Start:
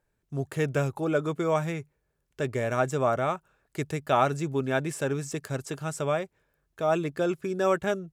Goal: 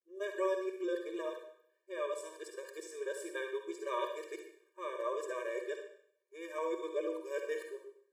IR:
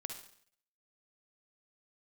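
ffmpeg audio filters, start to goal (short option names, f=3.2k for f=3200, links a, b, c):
-filter_complex "[0:a]areverse[a];[1:a]atrim=start_sample=2205[b];[a][b]afir=irnorm=-1:irlink=0,afftfilt=real='re*eq(mod(floor(b*sr/1024/310),2),1)':imag='im*eq(mod(floor(b*sr/1024/310),2),1)':win_size=1024:overlap=0.75,volume=-5.5dB"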